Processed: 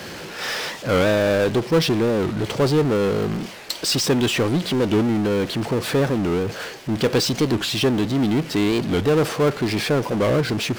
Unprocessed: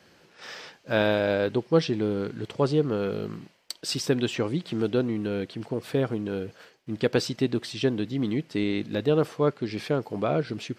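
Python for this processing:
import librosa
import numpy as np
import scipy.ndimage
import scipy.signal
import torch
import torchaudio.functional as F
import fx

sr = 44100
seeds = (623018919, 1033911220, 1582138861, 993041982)

y = fx.power_curve(x, sr, exponent=0.5)
y = fx.record_warp(y, sr, rpm=45.0, depth_cents=250.0)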